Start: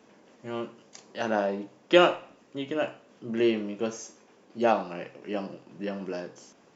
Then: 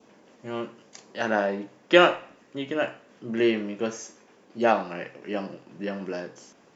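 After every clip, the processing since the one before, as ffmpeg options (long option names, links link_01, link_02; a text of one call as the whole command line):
ffmpeg -i in.wav -af "adynamicequalizer=threshold=0.00447:dfrequency=1800:dqfactor=2.1:tfrequency=1800:tqfactor=2.1:attack=5:release=100:ratio=0.375:range=3.5:mode=boostabove:tftype=bell,volume=1.5dB" out.wav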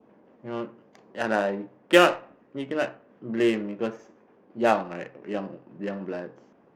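ffmpeg -i in.wav -af "adynamicsmooth=sensitivity=3:basefreq=1400" out.wav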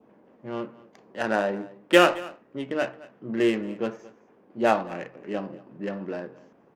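ffmpeg -i in.wav -af "aecho=1:1:223:0.0944" out.wav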